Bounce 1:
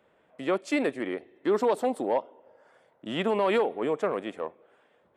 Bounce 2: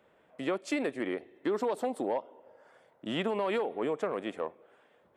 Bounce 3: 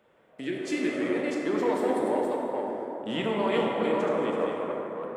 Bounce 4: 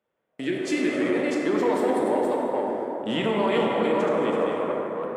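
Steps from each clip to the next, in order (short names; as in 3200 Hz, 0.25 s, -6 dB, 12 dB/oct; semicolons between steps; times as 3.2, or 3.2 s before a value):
compressor 4:1, threshold -28 dBFS, peak gain reduction 7.5 dB
reverse delay 0.337 s, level -4 dB; plate-style reverb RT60 3.6 s, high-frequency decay 0.4×, DRR -2 dB; spectral repair 0.43–1.07, 440–1500 Hz both
gate with hold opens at -47 dBFS; in parallel at +1 dB: limiter -21 dBFS, peak gain reduction 7.5 dB; on the sum: gain -1.5 dB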